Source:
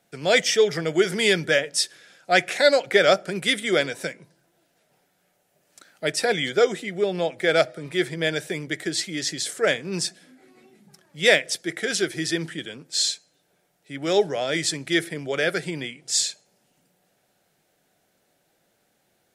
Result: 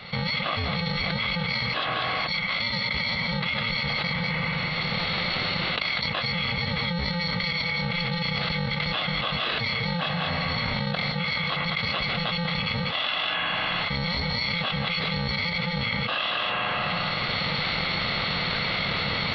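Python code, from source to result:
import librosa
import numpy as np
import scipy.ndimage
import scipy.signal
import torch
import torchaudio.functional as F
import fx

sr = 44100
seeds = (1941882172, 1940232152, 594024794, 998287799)

y = fx.bit_reversed(x, sr, seeds[0], block=128)
y = fx.recorder_agc(y, sr, target_db=-8.5, rise_db_per_s=12.0, max_gain_db=30)
y = scipy.signal.sosfilt(scipy.signal.butter(12, 5300.0, 'lowpass', fs=sr, output='sos'), y)
y = fx.low_shelf(y, sr, hz=120.0, db=-5.0)
y = y + 10.0 ** (-16.0 / 20.0) * np.pad(y, (int(194 * sr / 1000.0), 0))[:len(y)]
y = fx.rev_spring(y, sr, rt60_s=2.2, pass_ms=(40, 49), chirp_ms=55, drr_db=15.5)
y = fx.formant_shift(y, sr, semitones=-4)
y = fx.env_flatten(y, sr, amount_pct=100)
y = y * librosa.db_to_amplitude(-6.5)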